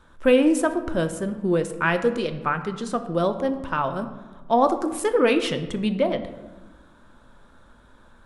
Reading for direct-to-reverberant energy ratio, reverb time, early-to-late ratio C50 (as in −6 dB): 7.5 dB, 1.2 s, 11.0 dB